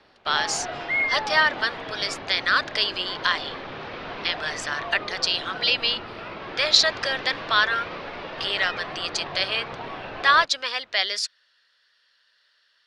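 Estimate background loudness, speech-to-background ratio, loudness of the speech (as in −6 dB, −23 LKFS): −32.5 LKFS, 9.0 dB, −23.5 LKFS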